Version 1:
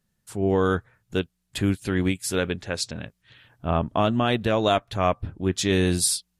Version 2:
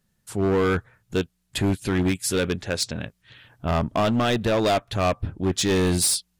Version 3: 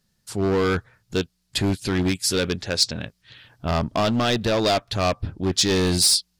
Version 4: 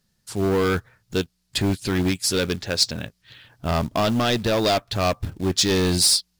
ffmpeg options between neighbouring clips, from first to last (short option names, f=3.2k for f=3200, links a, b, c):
-af "asoftclip=type=hard:threshold=-20.5dB,volume=3.5dB"
-af "equalizer=f=4.8k:w=1.7:g=9"
-af "acrusher=bits=5:mode=log:mix=0:aa=0.000001"